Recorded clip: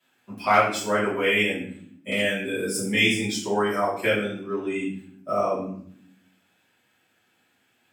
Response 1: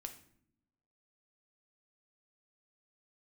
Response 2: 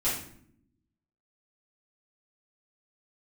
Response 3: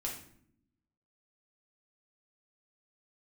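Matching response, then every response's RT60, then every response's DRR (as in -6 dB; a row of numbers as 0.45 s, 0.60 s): 2; no single decay rate, 0.65 s, 0.65 s; 5.5 dB, -11.0 dB, -2.5 dB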